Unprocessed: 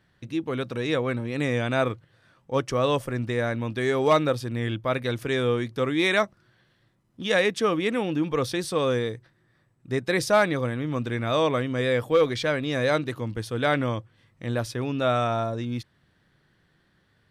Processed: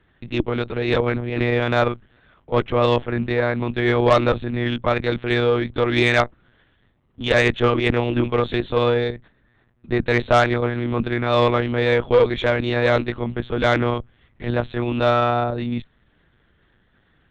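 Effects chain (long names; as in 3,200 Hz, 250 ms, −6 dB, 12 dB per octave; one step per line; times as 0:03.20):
one-pitch LPC vocoder at 8 kHz 120 Hz
harmonic generator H 5 −21 dB, 6 −20 dB, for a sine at −3.5 dBFS
level +2 dB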